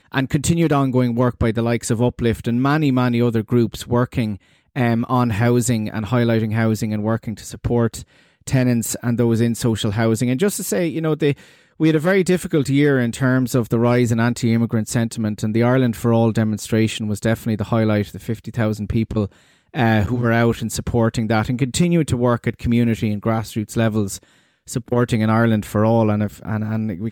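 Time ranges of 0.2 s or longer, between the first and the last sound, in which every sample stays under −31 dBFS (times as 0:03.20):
0:04.36–0:04.76
0:08.02–0:08.47
0:11.33–0:11.80
0:19.27–0:19.74
0:24.17–0:24.69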